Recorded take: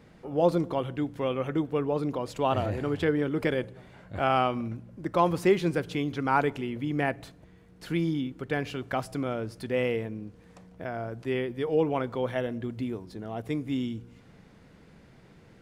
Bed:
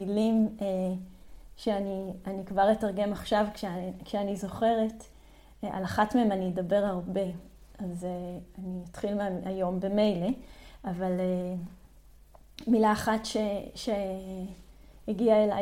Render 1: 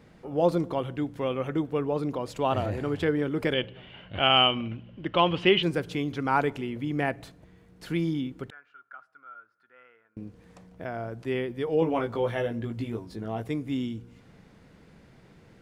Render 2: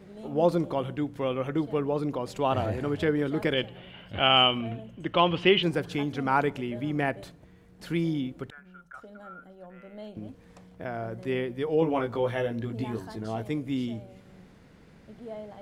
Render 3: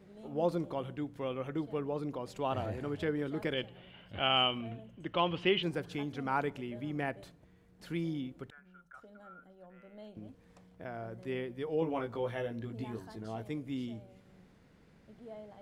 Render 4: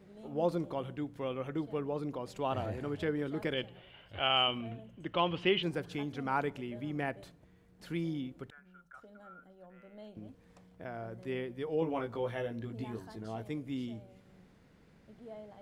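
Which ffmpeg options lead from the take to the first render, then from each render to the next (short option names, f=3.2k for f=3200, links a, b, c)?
-filter_complex "[0:a]asettb=1/sr,asplit=3[a][b][c];[a]atrim=end=3.534[d];[b]atrim=start=3.53:end=5.63,asetpts=PTS-STARTPTS,afade=t=in:d=0.004:c=qsin,afade=t=out:st=2.096:d=0.004:c=qsin,lowpass=f=3k:t=q:w=12[e];[c]atrim=start=5.626[f];[d][e]acrossfade=d=0.004:c1=hsin:c2=qsin[g];[g][f]acrossfade=d=0.004:c1=qsin:c2=hsin,asettb=1/sr,asplit=3[h][i][j];[h]atrim=end=8.504[k];[i]atrim=start=8.5:end=10.17,asetpts=PTS-STARTPTS,afade=t=in:d=0.004:c=qsin,afade=t=out:st=1.666:d=0.004:c=qsin,bandpass=f=1.4k:t=q:w=17[l];[j]atrim=start=10.166[m];[k][l]acrossfade=d=0.004:c1=hsin:c2=qsin[n];[n][m]acrossfade=d=0.004:c1=qsin:c2=hsin,asettb=1/sr,asplit=3[o][p][q];[o]atrim=end=11.804[r];[p]atrim=start=11.8:end=13.46,asetpts=PTS-STARTPTS,afade=t=in:d=0.004:c=qsin,afade=t=out:st=1.656:d=0.004:c=qsin,asplit=2[s][t];[t]adelay=18,volume=-3dB[u];[s][u]amix=inputs=2:normalize=0,atrim=end_sample=73206[v];[q]atrim=start=13.456[w];[r][v]acrossfade=d=0.004:c1=hsin:c2=qsin[x];[x][w]acrossfade=d=0.004:c1=qsin:c2=hsin"
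-filter_complex "[1:a]volume=-17.5dB[a];[0:a][a]amix=inputs=2:normalize=0"
-af "volume=-8dB"
-filter_complex "[0:a]asettb=1/sr,asplit=3[a][b][c];[a]atrim=end=3.794[d];[b]atrim=start=3.79:end=4.48,asetpts=PTS-STARTPTS,afade=t=in:d=0.004:c=qsin,afade=t=out:st=0.686:d=0.004:c=qsin,equalizer=f=200:t=o:w=0.77:g=-11.5[e];[c]atrim=start=4.476[f];[d][e]acrossfade=d=0.004:c1=hsin:c2=qsin[g];[g][f]acrossfade=d=0.004:c1=qsin:c2=hsin"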